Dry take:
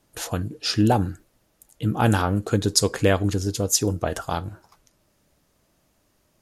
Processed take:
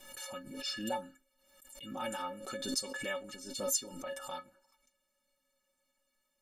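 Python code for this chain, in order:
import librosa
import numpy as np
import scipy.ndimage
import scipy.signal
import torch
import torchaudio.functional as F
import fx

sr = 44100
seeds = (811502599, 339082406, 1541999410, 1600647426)

y = fx.low_shelf(x, sr, hz=450.0, db=-10.0)
y = fx.stiff_resonator(y, sr, f0_hz=260.0, decay_s=0.22, stiffness=0.03)
y = fx.quant_float(y, sr, bits=6)
y = y + 0.82 * np.pad(y, (int(5.3 * sr / 1000.0), 0))[:len(y)]
y = fx.pre_swell(y, sr, db_per_s=61.0)
y = F.gain(torch.from_numpy(y), -1.5).numpy()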